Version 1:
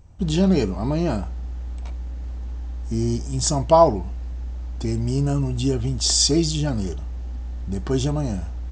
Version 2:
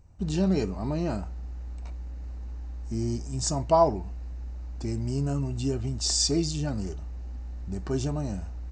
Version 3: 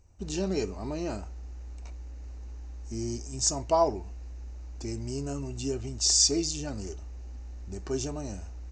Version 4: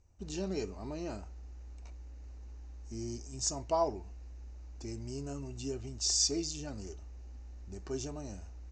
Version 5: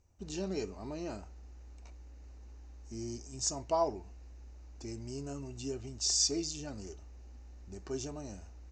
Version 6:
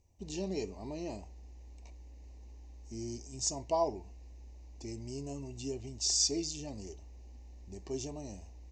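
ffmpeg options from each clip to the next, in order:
-af "bandreject=f=3300:w=5.2,volume=0.473"
-af "equalizer=f=160:t=o:w=0.67:g=-8,equalizer=f=400:t=o:w=0.67:g=4,equalizer=f=2500:t=o:w=0.67:g=4,equalizer=f=6300:t=o:w=0.67:g=10,volume=0.631"
-af "lowpass=f=8200:w=0.5412,lowpass=f=8200:w=1.3066,volume=0.473"
-af "lowshelf=f=66:g=-6.5"
-af "asuperstop=centerf=1400:order=4:qfactor=1.8"

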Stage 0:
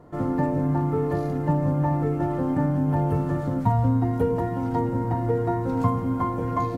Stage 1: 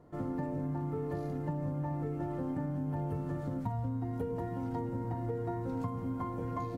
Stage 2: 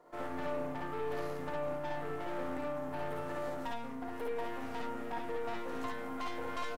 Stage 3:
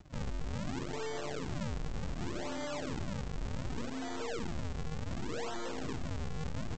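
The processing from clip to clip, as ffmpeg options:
-af "equalizer=f=1100:t=o:w=1.5:g=-2.5,acompressor=threshold=0.0708:ratio=6,volume=0.376"
-filter_complex "[0:a]highpass=570,aeval=exprs='(tanh(178*val(0)+0.8)-tanh(0.8))/178':c=same,asplit=2[s0][s1];[s1]aecho=0:1:56|68:0.708|0.708[s2];[s0][s2]amix=inputs=2:normalize=0,volume=2.66"
-af "aresample=16000,acrusher=samples=29:mix=1:aa=0.000001:lfo=1:lforange=46.4:lforate=0.67,aresample=44100,alimiter=level_in=3.98:limit=0.0631:level=0:latency=1:release=35,volume=0.251,volume=2"

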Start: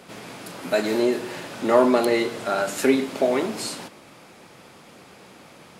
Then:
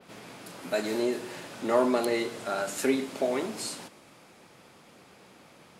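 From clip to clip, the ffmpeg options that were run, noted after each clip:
-af "adynamicequalizer=threshold=0.00631:dfrequency=8500:dqfactor=0.75:tfrequency=8500:tqfactor=0.75:attack=5:release=100:ratio=0.375:range=2:mode=boostabove:tftype=bell,volume=0.447"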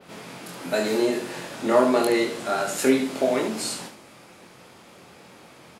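-af "aecho=1:1:23|73:0.668|0.422,volume=1.58"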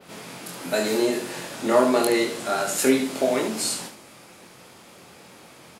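-af "highshelf=f=5300:g=6.5"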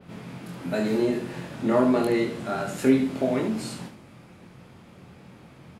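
-af "bass=f=250:g=15,treble=f=4000:g=-11,volume=0.562"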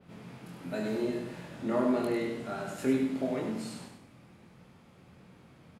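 -af "aecho=1:1:99|198|297|396:0.473|0.166|0.058|0.0203,volume=0.376"

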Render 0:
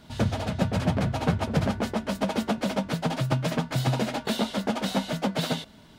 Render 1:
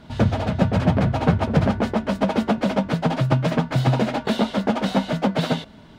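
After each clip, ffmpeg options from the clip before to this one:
-af "lowpass=f=2300:p=1,volume=2.11"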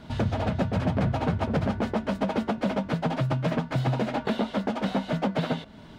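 -filter_complex "[0:a]acrossover=split=3200[s0][s1];[s0]alimiter=limit=0.158:level=0:latency=1:release=344[s2];[s1]acompressor=threshold=0.00355:ratio=6[s3];[s2][s3]amix=inputs=2:normalize=0"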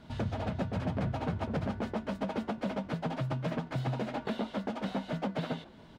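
-filter_complex "[0:a]asplit=5[s0][s1][s2][s3][s4];[s1]adelay=145,afreqshift=100,volume=0.0631[s5];[s2]adelay=290,afreqshift=200,volume=0.0347[s6];[s3]adelay=435,afreqshift=300,volume=0.0191[s7];[s4]adelay=580,afreqshift=400,volume=0.0105[s8];[s0][s5][s6][s7][s8]amix=inputs=5:normalize=0,volume=0.422"

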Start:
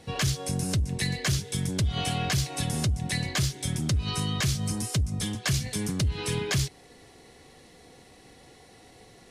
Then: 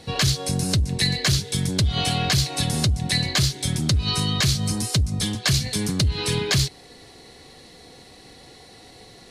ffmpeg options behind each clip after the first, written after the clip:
-af "equalizer=f=4200:w=3.3:g=8,volume=1.78"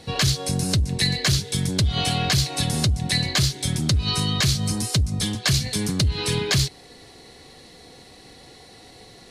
-af anull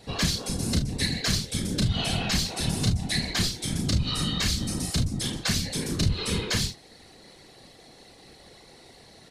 -af "aecho=1:1:33|50|73:0.631|0.266|0.211,afftfilt=real='hypot(re,im)*cos(2*PI*random(0))':imag='hypot(re,im)*sin(2*PI*random(1))':win_size=512:overlap=0.75,aeval=exprs='0.282*(cos(1*acos(clip(val(0)/0.282,-1,1)))-cos(1*PI/2))+0.00794*(cos(2*acos(clip(val(0)/0.282,-1,1)))-cos(2*PI/2))+0.002*(cos(3*acos(clip(val(0)/0.282,-1,1)))-cos(3*PI/2))':c=same"

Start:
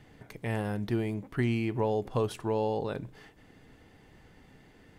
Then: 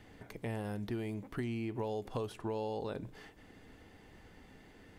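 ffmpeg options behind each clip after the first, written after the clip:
-filter_complex "[0:a]equalizer=f=140:w=7.1:g=-13,acrossover=split=1100|2900[s0][s1][s2];[s0]acompressor=threshold=0.0158:ratio=4[s3];[s1]acompressor=threshold=0.002:ratio=4[s4];[s2]acompressor=threshold=0.00158:ratio=4[s5];[s3][s4][s5]amix=inputs=3:normalize=0"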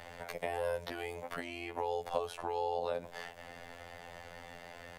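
-filter_complex "[0:a]afftfilt=real='hypot(re,im)*cos(PI*b)':imag='0':win_size=2048:overlap=0.75,acrossover=split=280|590[s0][s1][s2];[s0]acompressor=threshold=0.00158:ratio=4[s3];[s1]acompressor=threshold=0.00447:ratio=4[s4];[s2]acompressor=threshold=0.002:ratio=4[s5];[s3][s4][s5]amix=inputs=3:normalize=0,lowshelf=f=450:t=q:w=3:g=-8,volume=4.73"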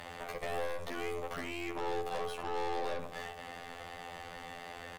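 -filter_complex "[0:a]aeval=exprs='(tanh(126*val(0)+0.55)-tanh(0.55))/126':c=same,asplit=2[s0][s1];[s1]adelay=67,lowpass=f=1200:p=1,volume=0.501,asplit=2[s2][s3];[s3]adelay=67,lowpass=f=1200:p=1,volume=0.54,asplit=2[s4][s5];[s5]adelay=67,lowpass=f=1200:p=1,volume=0.54,asplit=2[s6][s7];[s7]adelay=67,lowpass=f=1200:p=1,volume=0.54,asplit=2[s8][s9];[s9]adelay=67,lowpass=f=1200:p=1,volume=0.54,asplit=2[s10][s11];[s11]adelay=67,lowpass=f=1200:p=1,volume=0.54,asplit=2[s12][s13];[s13]adelay=67,lowpass=f=1200:p=1,volume=0.54[s14];[s0][s2][s4][s6][s8][s10][s12][s14]amix=inputs=8:normalize=0,volume=2.24"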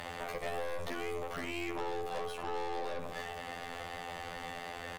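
-af "alimiter=level_in=3.98:limit=0.0631:level=0:latency=1:release=84,volume=0.251,volume=2.11"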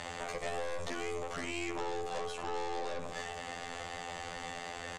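-af "lowpass=f=7400:t=q:w=2.6"

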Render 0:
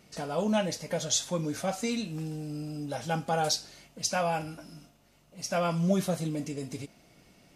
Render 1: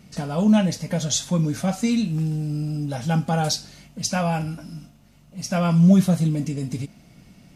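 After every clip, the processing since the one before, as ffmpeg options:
-af "lowshelf=f=280:t=q:w=1.5:g=7.5,volume=1.58"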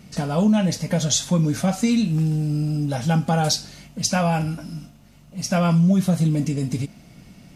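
-af "acompressor=threshold=0.126:ratio=6,volume=1.5"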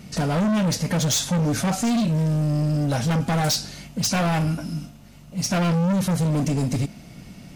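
-af "asoftclip=type=hard:threshold=0.0708,volume=1.58"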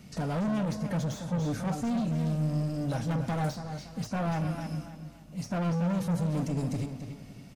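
-filter_complex "[0:a]asplit=2[s0][s1];[s1]adelay=283,lowpass=f=3000:p=1,volume=0.376,asplit=2[s2][s3];[s3]adelay=283,lowpass=f=3000:p=1,volume=0.36,asplit=2[s4][s5];[s5]adelay=283,lowpass=f=3000:p=1,volume=0.36,asplit=2[s6][s7];[s7]adelay=283,lowpass=f=3000:p=1,volume=0.36[s8];[s0][s2][s4][s6][s8]amix=inputs=5:normalize=0,acrossover=split=660|1600[s9][s10][s11];[s11]acompressor=threshold=0.0126:ratio=6[s12];[s9][s10][s12]amix=inputs=3:normalize=0,volume=0.376"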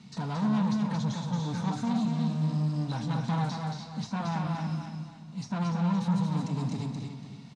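-filter_complex "[0:a]highpass=120,equalizer=f=130:t=q:w=4:g=5,equalizer=f=210:t=q:w=4:g=7,equalizer=f=320:t=q:w=4:g=-4,equalizer=f=570:t=q:w=4:g=-10,equalizer=f=950:t=q:w=4:g=10,equalizer=f=3900:t=q:w=4:g=10,lowpass=f=7900:w=0.5412,lowpass=f=7900:w=1.3066,asplit=2[s0][s1];[s1]aecho=0:1:226:0.631[s2];[s0][s2]amix=inputs=2:normalize=0,volume=0.708"

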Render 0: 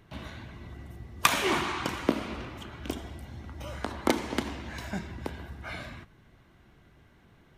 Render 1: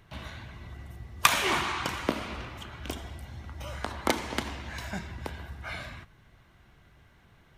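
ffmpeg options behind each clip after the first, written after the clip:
-af "equalizer=f=290:t=o:w=1.7:g=-7,volume=1.26"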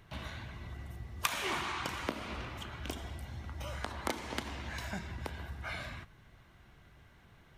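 -af "acompressor=threshold=0.0158:ratio=2,volume=0.891"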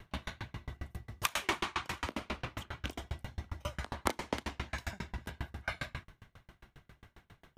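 -af "aeval=exprs='val(0)*pow(10,-36*if(lt(mod(7.4*n/s,1),2*abs(7.4)/1000),1-mod(7.4*n/s,1)/(2*abs(7.4)/1000),(mod(7.4*n/s,1)-2*abs(7.4)/1000)/(1-2*abs(7.4)/1000))/20)':c=same,volume=2.99"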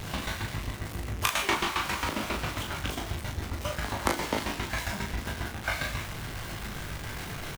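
-af "aeval=exprs='val(0)+0.5*0.015*sgn(val(0))':c=same,aecho=1:1:20|38:0.501|0.562,volume=1.41"

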